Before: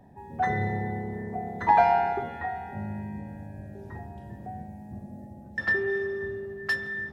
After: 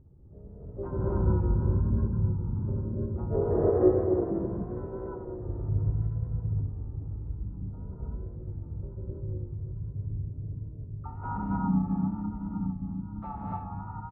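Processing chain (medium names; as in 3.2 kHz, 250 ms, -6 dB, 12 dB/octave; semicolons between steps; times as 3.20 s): resampled via 11.025 kHz; wow and flutter 110 cents; gated-style reverb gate 170 ms rising, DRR -5 dB; wide varispeed 0.505×; low-pass that closes with the level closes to 1.7 kHz, closed at -12 dBFS; FFT filter 140 Hz 0 dB, 320 Hz -4 dB, 560 Hz -7 dB, 1.4 kHz -10 dB, 2 kHz -21 dB, 3.6 kHz -26 dB; harmony voices -3 st -11 dB, +5 st -10 dB, +7 st -12 dB; tone controls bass +6 dB, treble -8 dB; trim -7 dB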